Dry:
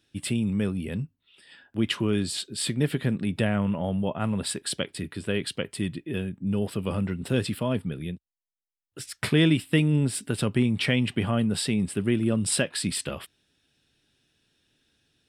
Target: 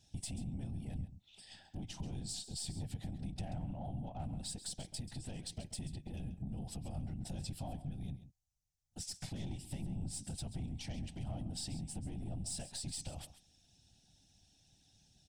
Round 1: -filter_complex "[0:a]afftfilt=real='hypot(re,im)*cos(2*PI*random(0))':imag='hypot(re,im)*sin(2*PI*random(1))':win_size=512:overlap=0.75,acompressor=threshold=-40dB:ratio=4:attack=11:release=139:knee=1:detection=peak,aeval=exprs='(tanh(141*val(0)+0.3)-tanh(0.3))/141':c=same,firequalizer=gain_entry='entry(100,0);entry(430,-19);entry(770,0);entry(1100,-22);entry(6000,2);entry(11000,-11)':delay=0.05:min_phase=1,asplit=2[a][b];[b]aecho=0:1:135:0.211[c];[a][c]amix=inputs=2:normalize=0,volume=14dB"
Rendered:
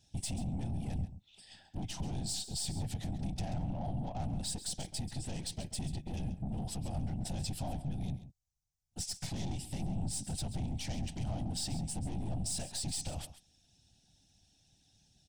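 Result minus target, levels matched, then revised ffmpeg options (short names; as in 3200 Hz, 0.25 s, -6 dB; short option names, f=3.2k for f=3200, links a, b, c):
compressor: peak gain reduction -8.5 dB
-filter_complex "[0:a]afftfilt=real='hypot(re,im)*cos(2*PI*random(0))':imag='hypot(re,im)*sin(2*PI*random(1))':win_size=512:overlap=0.75,acompressor=threshold=-51.5dB:ratio=4:attack=11:release=139:knee=1:detection=peak,aeval=exprs='(tanh(141*val(0)+0.3)-tanh(0.3))/141':c=same,firequalizer=gain_entry='entry(100,0);entry(430,-19);entry(770,0);entry(1100,-22);entry(6000,2);entry(11000,-11)':delay=0.05:min_phase=1,asplit=2[a][b];[b]aecho=0:1:135:0.211[c];[a][c]amix=inputs=2:normalize=0,volume=14dB"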